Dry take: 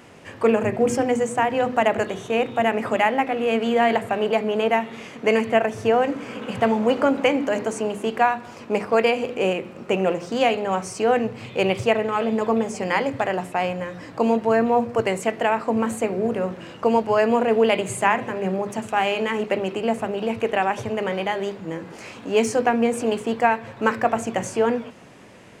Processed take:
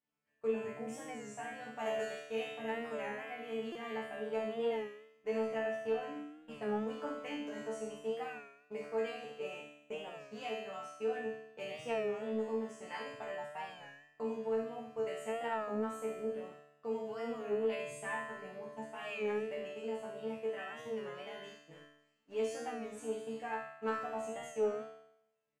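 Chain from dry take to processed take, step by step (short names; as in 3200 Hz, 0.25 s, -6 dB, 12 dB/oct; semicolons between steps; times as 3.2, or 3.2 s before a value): gate -28 dBFS, range -27 dB; 1.79–2.52 high shelf 2100 Hz +9.5 dB; in parallel at -1 dB: compressor, threshold -27 dBFS, peak gain reduction 14 dB; on the sum: resonator bank D3 fifth, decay 0.79 s; soft clip -19 dBFS, distortion -26 dB; on a send: early reflections 47 ms -8.5 dB, 71 ms -10.5 dB; on the sum: stuck buffer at 3.72, samples 128, times 10; record warp 33 1/3 rpm, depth 100 cents; gain -3.5 dB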